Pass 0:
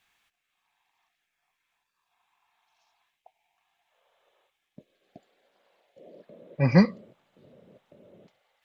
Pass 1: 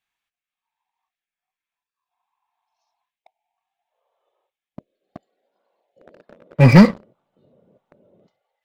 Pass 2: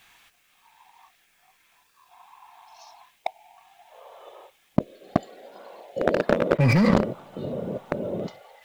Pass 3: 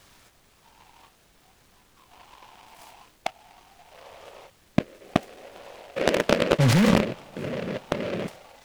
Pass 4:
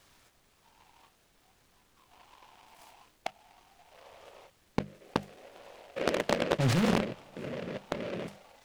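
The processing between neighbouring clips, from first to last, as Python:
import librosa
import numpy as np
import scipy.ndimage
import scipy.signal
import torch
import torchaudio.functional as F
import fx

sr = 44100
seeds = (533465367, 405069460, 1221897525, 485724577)

y1 = fx.noise_reduce_blind(x, sr, reduce_db=10)
y1 = fx.leveller(y1, sr, passes=3)
y1 = y1 * librosa.db_to_amplitude(3.5)
y2 = fx.env_flatten(y1, sr, amount_pct=100)
y2 = y2 * librosa.db_to_amplitude(-13.0)
y3 = fx.dmg_noise_colour(y2, sr, seeds[0], colour='pink', level_db=-61.0)
y3 = fx.noise_mod_delay(y3, sr, seeds[1], noise_hz=1700.0, depth_ms=0.11)
y4 = fx.hum_notches(y3, sr, base_hz=50, count=4)
y4 = fx.doppler_dist(y4, sr, depth_ms=0.56)
y4 = y4 * librosa.db_to_amplitude(-7.0)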